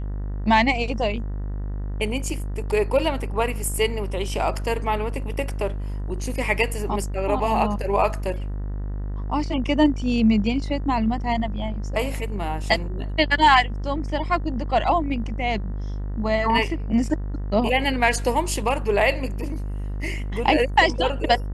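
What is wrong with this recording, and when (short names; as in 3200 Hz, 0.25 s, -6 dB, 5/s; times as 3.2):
buzz 50 Hz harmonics 39 -28 dBFS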